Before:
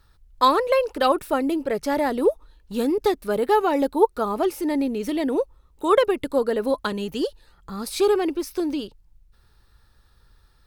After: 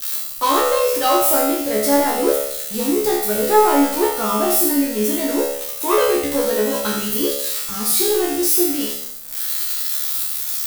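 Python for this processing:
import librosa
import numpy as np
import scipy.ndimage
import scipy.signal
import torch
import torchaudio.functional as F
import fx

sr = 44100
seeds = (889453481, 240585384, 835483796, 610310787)

p1 = x + 0.5 * 10.0 ** (-16.5 / 20.0) * np.diff(np.sign(x), prepend=np.sign(x[:1]))
p2 = fx.high_shelf(p1, sr, hz=8100.0, db=3.5)
p3 = np.clip(p2, -10.0 ** (-16.0 / 20.0), 10.0 ** (-16.0 / 20.0))
p4 = p2 + F.gain(torch.from_numpy(p3), -3.5).numpy()
p5 = fx.leveller(p4, sr, passes=1)
p6 = fx.comb_fb(p5, sr, f0_hz=71.0, decay_s=0.73, harmonics='all', damping=0.0, mix_pct=100)
p7 = p6 + 10.0 ** (-8.0 / 20.0) * np.pad(p6, (int(83 * sr / 1000.0), 0))[:len(p6)]
y = F.gain(torch.from_numpy(p7), 8.0).numpy()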